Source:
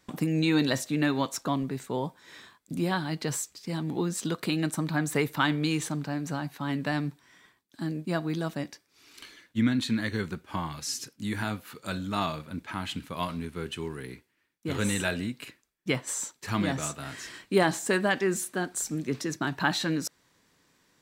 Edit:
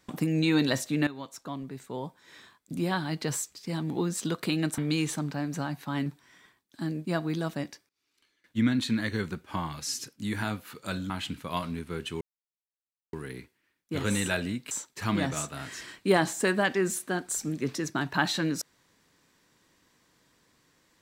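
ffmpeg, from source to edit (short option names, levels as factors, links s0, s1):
-filter_complex "[0:a]asplit=9[s0][s1][s2][s3][s4][s5][s6][s7][s8];[s0]atrim=end=1.07,asetpts=PTS-STARTPTS,afade=t=out:st=1.066:d=0.004:c=hsin:silence=0.188365[s9];[s1]atrim=start=1.07:end=4.782,asetpts=PTS-STARTPTS,afade=t=in:d=2.04:silence=0.188365[s10];[s2]atrim=start=5.508:end=6.792[s11];[s3]atrim=start=7.058:end=8.89,asetpts=PTS-STARTPTS,afade=t=out:st=1.582:d=0.25:c=log:silence=0.0749894[s12];[s4]atrim=start=8.89:end=9.44,asetpts=PTS-STARTPTS,volume=0.075[s13];[s5]atrim=start=9.44:end=12.102,asetpts=PTS-STARTPTS,afade=t=in:d=0.25:c=log:silence=0.0749894[s14];[s6]atrim=start=12.758:end=13.87,asetpts=PTS-STARTPTS,afade=t=out:st=1.108:d=0.004:c=hsin,apad=pad_dur=0.92[s15];[s7]atrim=start=13.87:end=15.452,asetpts=PTS-STARTPTS,afade=t=in:d=0.004:c=hsin[s16];[s8]atrim=start=16.168[s17];[s9][s10]concat=n=2:v=0:a=1[s18];[s18][s11]acrossfade=d=0.004:c1=hsin:c2=hsin[s19];[s12][s13][s14]concat=n=3:v=0:a=1[s20];[s19][s20]acrossfade=d=0.004:c1=hsin:c2=hsin[s21];[s15][s16]concat=n=2:v=0:a=1[s22];[s21][s22]acrossfade=d=0.004:c1=hsin:c2=hsin[s23];[s23][s17]acrossfade=d=0.004:c1=hsin:c2=hsin"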